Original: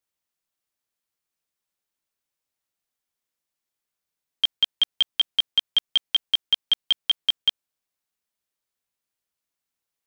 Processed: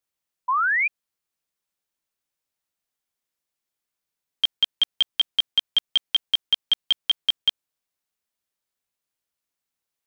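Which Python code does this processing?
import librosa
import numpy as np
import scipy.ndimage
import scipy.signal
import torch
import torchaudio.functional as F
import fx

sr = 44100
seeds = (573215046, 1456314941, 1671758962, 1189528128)

y = fx.spec_paint(x, sr, seeds[0], shape='rise', start_s=0.48, length_s=0.4, low_hz=970.0, high_hz=2500.0, level_db=-21.0)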